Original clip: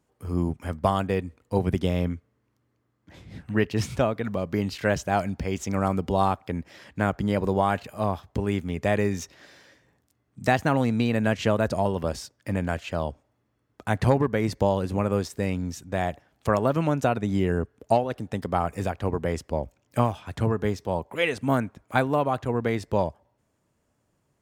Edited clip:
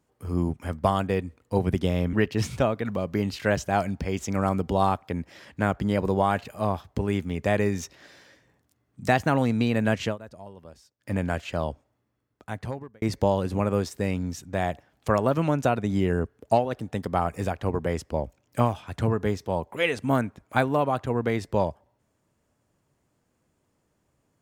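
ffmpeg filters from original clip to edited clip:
-filter_complex "[0:a]asplit=5[a][b][c][d][e];[a]atrim=end=2.132[f];[b]atrim=start=3.518:end=11.56,asetpts=PTS-STARTPTS,afade=t=out:st=7.892:d=0.15:silence=0.112202[g];[c]atrim=start=11.56:end=12.37,asetpts=PTS-STARTPTS,volume=-19dB[h];[d]atrim=start=12.37:end=14.41,asetpts=PTS-STARTPTS,afade=t=in:d=0.15:silence=0.112202,afade=t=out:st=0.67:d=1.37[i];[e]atrim=start=14.41,asetpts=PTS-STARTPTS,afade=t=in:d=0.004:c=hsin[j];[g][h][i][j]concat=n=4:v=0:a=1[k];[f][k]acrossfade=d=0.004:c1=hsin:c2=hsin"

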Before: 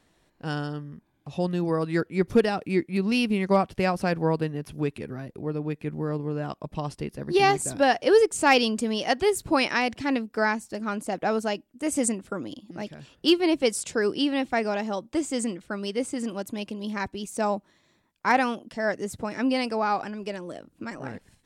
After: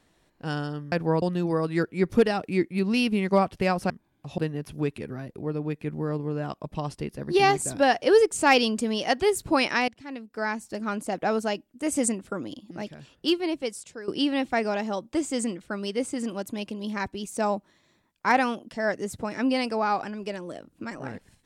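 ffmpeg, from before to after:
-filter_complex "[0:a]asplit=7[a][b][c][d][e][f][g];[a]atrim=end=0.922[h];[b]atrim=start=4.078:end=4.382[i];[c]atrim=start=1.398:end=4.082[j];[d]atrim=start=0.918:end=1.402[k];[e]atrim=start=4.378:end=9.88,asetpts=PTS-STARTPTS,afade=t=out:st=5.498:d=0.004:c=hsin:silence=0.177828[l];[f]atrim=start=9.88:end=14.08,asetpts=PTS-STARTPTS,afade=t=in:d=0.83:c=qua:silence=0.177828,afade=t=out:st=2.89:d=1.31:silence=0.141254[m];[g]atrim=start=14.08,asetpts=PTS-STARTPTS,afade=t=in:d=0.004:c=hsin:silence=0.141254[n];[h][i]acrossfade=d=0.004:c1=hsin:c2=hsin[o];[o][j]acrossfade=d=0.004:c1=hsin:c2=hsin[p];[p][k]acrossfade=d=0.004:c1=hsin:c2=hsin[q];[l][m][n]concat=n=3:v=0:a=1[r];[q][r]acrossfade=d=0.004:c1=hsin:c2=hsin"

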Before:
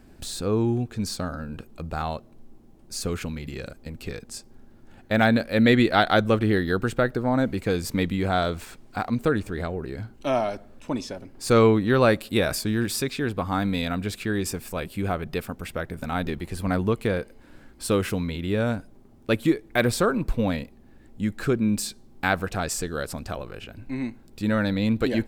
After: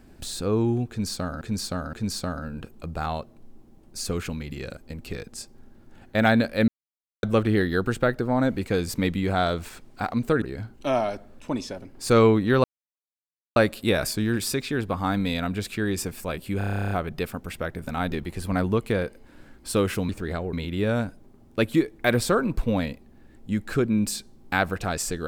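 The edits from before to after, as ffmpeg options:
-filter_complex "[0:a]asplit=20[a][b][c][d][e][f][g][h][i][j][k][l][m][n][o][p][q][r][s][t];[a]atrim=end=1.412[u];[b]atrim=start=0.888:end=1.412[v];[c]atrim=start=0.888:end=5.64,asetpts=PTS-STARTPTS,afade=t=out:st=4.748:d=0.004:c=hsin[w];[d]atrim=start=5.64:end=6.19,asetpts=PTS-STARTPTS,volume=0[x];[e]atrim=start=6.19:end=9.382,asetpts=PTS-STARTPTS,afade=t=in:d=0.004:c=hsin[y];[f]atrim=start=9.818:end=12.04,asetpts=PTS-STARTPTS,afade=t=out:st=2.218:d=0.004:c=hsin,apad=pad_dur=0.92[z];[g]atrim=start=12.04:end=15.092,asetpts=PTS-STARTPTS,afade=t=in:d=0.004:c=hsin[aa];[h]atrim=start=15.058:end=15.092[ab];[i]atrim=start=15.058:end=15.092[ac];[j]atrim=start=15.058:end=15.092[ad];[k]atrim=start=15.058:end=15.092[ae];[l]atrim=start=15.058:end=15.092[af];[m]atrim=start=15.058:end=15.092[ag];[n]atrim=start=15.058:end=15.092[ah];[o]atrim=start=15.058:end=15.092[ai];[p]atrim=start=15.058:end=15.092[aj];[q]atrim=start=15.058:end=15.092[ak];[r]atrim=start=15.058:end=18.242[al];[s]atrim=start=9.378:end=9.822[am];[t]atrim=start=18.238[an];[u][v]acrossfade=d=0.004:c1=hsin:c2=hsin[ao];[w][x][y]concat=n=3:v=0:a=1[ap];[ao][ap]acrossfade=d=0.004:c1=hsin:c2=hsin[aq];[z][aa]concat=n=2:v=0:a=1[ar];[aq][ar]acrossfade=d=0.004:c1=hsin:c2=hsin[as];[as][ab]acrossfade=d=0.004:c1=hsin:c2=hsin[at];[at][ac]acrossfade=d=0.004:c1=hsin:c2=hsin[au];[au][ad]acrossfade=d=0.004:c1=hsin:c2=hsin[av];[av][ae]acrossfade=d=0.004:c1=hsin:c2=hsin[aw];[aw][af]acrossfade=d=0.004:c1=hsin:c2=hsin[ax];[ax][ag]acrossfade=d=0.004:c1=hsin:c2=hsin[ay];[ay][ah]acrossfade=d=0.004:c1=hsin:c2=hsin[az];[az][ai]acrossfade=d=0.004:c1=hsin:c2=hsin[ba];[ba][aj]acrossfade=d=0.004:c1=hsin:c2=hsin[bb];[bb][ak]acrossfade=d=0.004:c1=hsin:c2=hsin[bc];[bc][al]acrossfade=d=0.004:c1=hsin:c2=hsin[bd];[bd][am]acrossfade=d=0.004:c1=hsin:c2=hsin[be];[be][an]acrossfade=d=0.004:c1=hsin:c2=hsin"

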